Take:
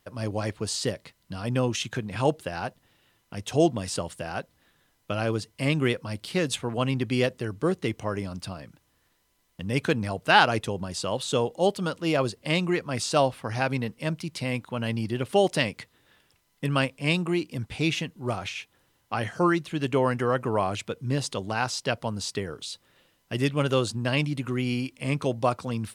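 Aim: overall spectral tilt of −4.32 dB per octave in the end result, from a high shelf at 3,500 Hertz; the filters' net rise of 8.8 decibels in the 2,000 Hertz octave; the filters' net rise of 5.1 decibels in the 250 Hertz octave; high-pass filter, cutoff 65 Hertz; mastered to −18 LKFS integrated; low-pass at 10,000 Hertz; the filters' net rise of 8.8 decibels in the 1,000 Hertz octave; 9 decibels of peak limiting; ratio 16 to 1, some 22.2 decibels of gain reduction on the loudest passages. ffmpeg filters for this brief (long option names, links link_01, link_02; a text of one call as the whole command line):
ffmpeg -i in.wav -af "highpass=65,lowpass=10000,equalizer=frequency=250:width_type=o:gain=6,equalizer=frequency=1000:width_type=o:gain=9,equalizer=frequency=2000:width_type=o:gain=7.5,highshelf=frequency=3500:gain=3.5,acompressor=threshold=-26dB:ratio=16,volume=15dB,alimiter=limit=-4.5dB:level=0:latency=1" out.wav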